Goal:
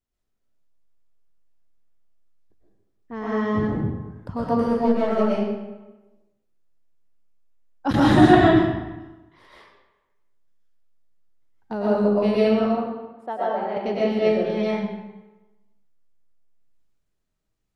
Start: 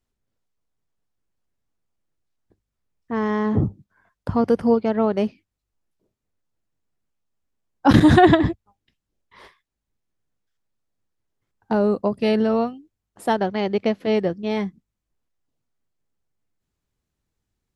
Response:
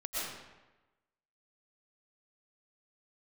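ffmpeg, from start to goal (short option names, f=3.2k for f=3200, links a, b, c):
-filter_complex "[0:a]asettb=1/sr,asplit=3[a][b][c];[a]atrim=end=4.684[d];[b]atrim=start=4.68:end=5.14,asetpts=PTS-STARTPTS,afade=t=in:d=0.004:c=qsin,afade=t=out:st=0.456:d=0.004:c=qsin,aeval=exprs='clip(val(0),-1,0.188)':c=same[e];[c]atrim=start=5.136[f];[d][e]acrossfade=d=0.004:c1=hsin:c2=qsin[g];[g][f]acrossfade=d=0.004:c1=qsin:c2=hsin,asettb=1/sr,asplit=3[h][i][j];[h]atrim=end=12.604[k];[i]atrim=start=12.6:end=13.77,asetpts=PTS-STARTPTS,afade=t=in:d=0.004:c=qsin,afade=t=out:st=1.166:d=0.004:c=qsin,bandpass=f=750:t=q:w=0.94:csg=0[l];[j]atrim=start=13.766[m];[k][l]acrossfade=d=0.004:c1=hsin:c2=qsin[n];[n][m]acrossfade=d=0.004:c1=qsin:c2=hsin[o];[1:a]atrim=start_sample=2205[p];[o][p]afir=irnorm=-1:irlink=0,volume=-4.5dB"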